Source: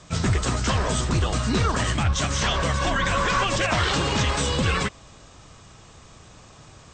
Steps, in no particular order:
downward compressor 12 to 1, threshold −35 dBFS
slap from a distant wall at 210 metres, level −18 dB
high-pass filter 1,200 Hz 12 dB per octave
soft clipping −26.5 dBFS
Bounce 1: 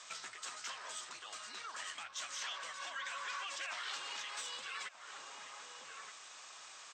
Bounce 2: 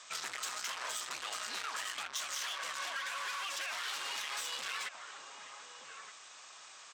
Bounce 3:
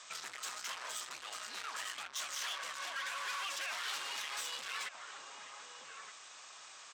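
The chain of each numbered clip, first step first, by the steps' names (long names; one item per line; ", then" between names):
slap from a distant wall, then downward compressor, then soft clipping, then high-pass filter
slap from a distant wall, then soft clipping, then high-pass filter, then downward compressor
slap from a distant wall, then soft clipping, then downward compressor, then high-pass filter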